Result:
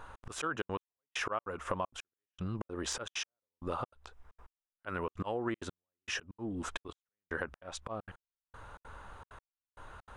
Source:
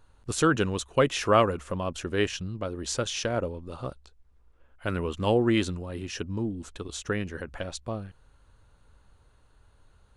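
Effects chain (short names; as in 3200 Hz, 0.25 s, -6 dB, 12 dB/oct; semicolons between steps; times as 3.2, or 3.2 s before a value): de-esser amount 60%; bell 1100 Hz +14.5 dB 2.6 oct; notch 4300 Hz, Q 9.2; auto swell 0.479 s; compressor 5:1, threshold -39 dBFS, peak gain reduction 21 dB; step gate "xx.xxxxx.x.....x" 195 bpm -60 dB; gain +5 dB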